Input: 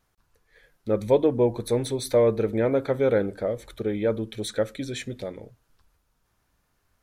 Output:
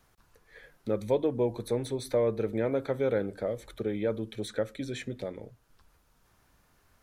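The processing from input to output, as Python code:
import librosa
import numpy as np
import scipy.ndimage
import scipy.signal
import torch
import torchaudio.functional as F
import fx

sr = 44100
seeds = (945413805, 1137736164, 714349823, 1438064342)

y = fx.band_squash(x, sr, depth_pct=40)
y = y * librosa.db_to_amplitude(-6.0)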